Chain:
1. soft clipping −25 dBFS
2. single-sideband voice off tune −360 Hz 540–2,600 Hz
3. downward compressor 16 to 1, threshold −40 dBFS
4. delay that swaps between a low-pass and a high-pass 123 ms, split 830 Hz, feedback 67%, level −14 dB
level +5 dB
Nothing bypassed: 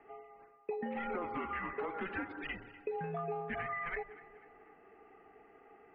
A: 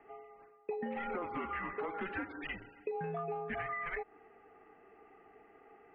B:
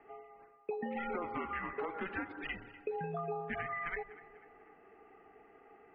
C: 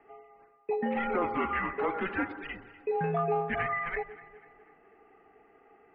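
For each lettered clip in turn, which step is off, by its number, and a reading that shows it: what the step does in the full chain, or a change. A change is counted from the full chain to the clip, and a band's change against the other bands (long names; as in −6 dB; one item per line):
4, echo-to-direct ratio −15.5 dB to none audible
1, distortion level −17 dB
3, average gain reduction 4.0 dB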